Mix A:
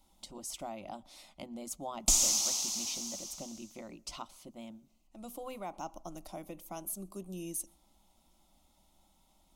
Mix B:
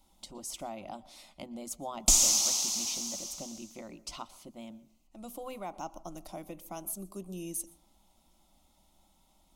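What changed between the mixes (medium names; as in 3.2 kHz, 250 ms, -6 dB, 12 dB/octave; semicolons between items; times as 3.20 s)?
speech: send +10.0 dB; background +3.5 dB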